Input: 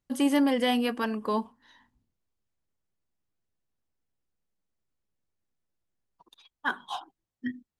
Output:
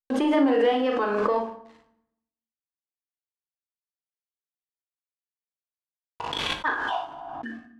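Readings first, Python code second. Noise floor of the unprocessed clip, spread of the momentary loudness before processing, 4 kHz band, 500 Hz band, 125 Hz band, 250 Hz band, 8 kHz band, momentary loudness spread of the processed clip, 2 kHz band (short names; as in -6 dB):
under -85 dBFS, 15 LU, +3.5 dB, +8.0 dB, n/a, +1.0 dB, -3.0 dB, 16 LU, +4.0 dB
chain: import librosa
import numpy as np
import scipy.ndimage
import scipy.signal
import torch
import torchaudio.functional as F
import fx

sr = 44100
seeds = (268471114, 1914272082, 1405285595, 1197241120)

p1 = scipy.signal.sosfilt(scipy.signal.butter(4, 340.0, 'highpass', fs=sr, output='sos'), x)
p2 = fx.high_shelf(p1, sr, hz=2700.0, db=-4.0)
p3 = fx.rider(p2, sr, range_db=10, speed_s=0.5)
p4 = p2 + (p3 * 10.0 ** (0.0 / 20.0))
p5 = 10.0 ** (-13.5 / 20.0) * np.tanh(p4 / 10.0 ** (-13.5 / 20.0))
p6 = fx.quant_dither(p5, sr, seeds[0], bits=8, dither='none')
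p7 = fx.wow_flutter(p6, sr, seeds[1], rate_hz=2.1, depth_cents=120.0)
p8 = fx.spacing_loss(p7, sr, db_at_10k=25)
p9 = p8 + fx.room_early_taps(p8, sr, ms=(39, 58), db=(-5.5, -8.0), dry=0)
p10 = fx.rev_fdn(p9, sr, rt60_s=0.76, lf_ratio=1.3, hf_ratio=0.7, size_ms=65.0, drr_db=6.0)
y = fx.pre_swell(p10, sr, db_per_s=21.0)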